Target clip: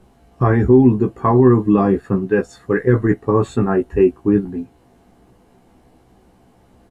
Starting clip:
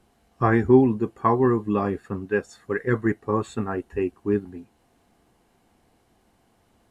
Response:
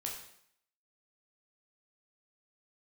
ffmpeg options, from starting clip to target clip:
-filter_complex "[0:a]tiltshelf=frequency=970:gain=4.5,alimiter=limit=-13dB:level=0:latency=1:release=23,asplit=2[link_01][link_02];[link_02]adelay=16,volume=-4dB[link_03];[link_01][link_03]amix=inputs=2:normalize=0,volume=7dB"

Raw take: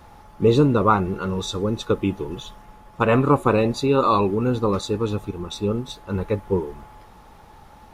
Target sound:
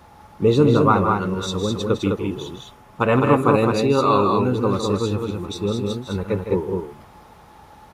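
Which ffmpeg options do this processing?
ffmpeg -i in.wav -af "highpass=62,aecho=1:1:157.4|207:0.355|0.631" out.wav

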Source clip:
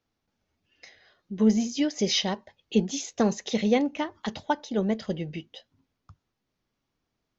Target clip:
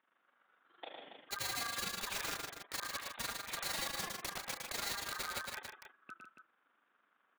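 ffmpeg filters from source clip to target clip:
ffmpeg -i in.wav -af "aeval=exprs='val(0)*sin(2*PI*1400*n/s)':channel_layout=same,highpass=frequency=200:width=0.5412,highpass=frequency=200:width=1.3066,aemphasis=mode=reproduction:type=75kf,acompressor=threshold=-42dB:ratio=6,aresample=8000,asoftclip=type=tanh:threshold=-40dB,aresample=44100,bandreject=frequency=332.3:width_type=h:width=4,bandreject=frequency=664.6:width_type=h:width=4,bandreject=frequency=996.9:width_type=h:width=4,bandreject=frequency=1329.2:width_type=h:width=4,aeval=exprs='(mod(150*val(0)+1,2)-1)/150':channel_layout=same,tremolo=f=24:d=0.824,aecho=1:1:107.9|151.6|279.9:0.562|0.355|0.355,volume=11.5dB" out.wav

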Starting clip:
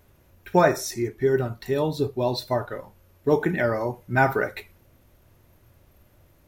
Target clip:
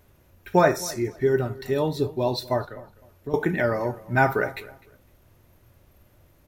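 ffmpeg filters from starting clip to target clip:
ffmpeg -i in.wav -filter_complex "[0:a]asettb=1/sr,asplit=3[link_01][link_02][link_03];[link_01]atrim=end=2.644[link_04];[link_02]atrim=start=2.64:end=3.34,asetpts=PTS-STARTPTS,afade=type=in:duration=0.004:curve=qsin,afade=type=out:start_time=0.696:duration=0.004:curve=qsin,acrossover=split=120[link_05][link_06];[link_06]acompressor=threshold=-43dB:ratio=2[link_07];[link_05][link_07]amix=inputs=2:normalize=0[link_08];[link_03]atrim=start=3.336[link_09];[link_04][link_08]acrossfade=duration=0.004:curve1=hsin:curve2=qsin[link_10];[link_10][link_09]acrossfade=duration=0.004:curve1=qsin:curve2=hsin,asplit=2[link_11][link_12];[link_12]adelay=254,lowpass=frequency=2500:poles=1,volume=-19.5dB,asplit=2[link_13][link_14];[link_14]adelay=254,lowpass=frequency=2500:poles=1,volume=0.25[link_15];[link_11][link_13][link_15]amix=inputs=3:normalize=0" out.wav

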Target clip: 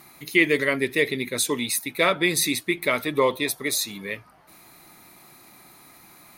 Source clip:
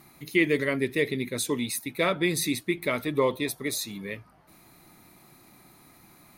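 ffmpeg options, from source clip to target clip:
ffmpeg -i in.wav -af "lowshelf=frequency=370:gain=-9,volume=6.5dB" out.wav

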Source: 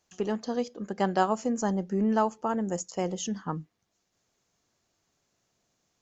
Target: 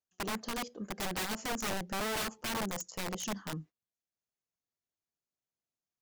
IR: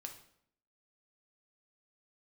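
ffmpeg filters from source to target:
-af "agate=range=-20dB:threshold=-46dB:ratio=16:detection=peak,aeval=exprs='0.316*(cos(1*acos(clip(val(0)/0.316,-1,1)))-cos(1*PI/2))+0.0355*(cos(5*acos(clip(val(0)/0.316,-1,1)))-cos(5*PI/2))+0.002*(cos(8*acos(clip(val(0)/0.316,-1,1)))-cos(8*PI/2))':channel_layout=same,aeval=exprs='(mod(12.6*val(0)+1,2)-1)/12.6':channel_layout=same,volume=-8dB"

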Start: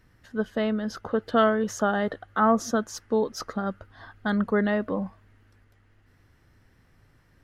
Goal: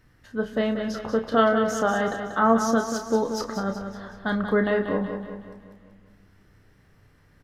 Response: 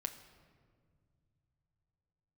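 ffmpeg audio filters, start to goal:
-filter_complex "[0:a]asplit=2[link_01][link_02];[link_02]adelay=31,volume=-7.5dB[link_03];[link_01][link_03]amix=inputs=2:normalize=0,aecho=1:1:187|374|561|748|935|1122:0.398|0.199|0.0995|0.0498|0.0249|0.0124,asplit=2[link_04][link_05];[1:a]atrim=start_sample=2205[link_06];[link_05][link_06]afir=irnorm=-1:irlink=0,volume=-1dB[link_07];[link_04][link_07]amix=inputs=2:normalize=0,volume=-4dB"

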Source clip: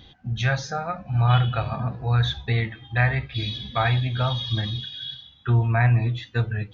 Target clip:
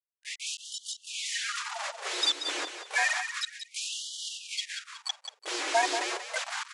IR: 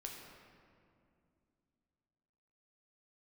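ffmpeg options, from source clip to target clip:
-filter_complex "[0:a]aemphasis=mode=production:type=cd,afftfilt=real='re*gte(hypot(re,im),0.398)':imag='im*gte(hypot(re,im),0.398)':win_size=1024:overlap=0.75,acrossover=split=490[link_01][link_02];[link_02]alimiter=level_in=3dB:limit=-24dB:level=0:latency=1:release=11,volume=-3dB[link_03];[link_01][link_03]amix=inputs=2:normalize=0,acontrast=83,aresample=16000,acrusher=bits=4:mix=0:aa=0.000001,aresample=44100,asplit=2[link_04][link_05];[link_05]asetrate=58866,aresample=44100,atempo=0.749154,volume=-5dB[link_06];[link_04][link_06]amix=inputs=2:normalize=0,aecho=1:1:184|368|552|736:0.376|0.139|0.0515|0.019,afftfilt=real='re*gte(b*sr/1024,270*pow(2900/270,0.5+0.5*sin(2*PI*0.3*pts/sr)))':imag='im*gte(b*sr/1024,270*pow(2900/270,0.5+0.5*sin(2*PI*0.3*pts/sr)))':win_size=1024:overlap=0.75"

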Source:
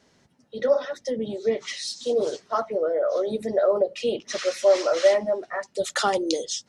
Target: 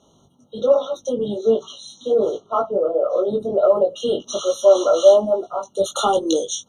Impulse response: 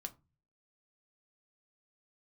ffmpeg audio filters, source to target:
-filter_complex "[0:a]asettb=1/sr,asplit=3[link_01][link_02][link_03];[link_01]atrim=end=1.634[link_04];[link_02]atrim=start=1.63:end=3.63,asetpts=PTS-STARTPTS,afade=type=in:duration=0.004:curve=qsin,afade=type=out:start_time=1.996:duration=0.004:curve=qsin,lowpass=frequency=1700:poles=1[link_05];[link_03]atrim=start=3.626[link_06];[link_04][link_05]acrossfade=duration=0.004:curve1=hsin:curve2=qsin[link_07];[link_07][link_06]acrossfade=duration=0.004:curve1=qsin:curve2=hsin,asplit=2[link_08][link_09];[link_09]asoftclip=type=tanh:threshold=-20.5dB,volume=-12dB[link_10];[link_08][link_10]amix=inputs=2:normalize=0,flanger=delay=18:depth=2.7:speed=1.3,afftfilt=real='re*eq(mod(floor(b*sr/1024/1400),2),0)':imag='im*eq(mod(floor(b*sr/1024/1400),2),0)':win_size=1024:overlap=0.75,volume=7dB"

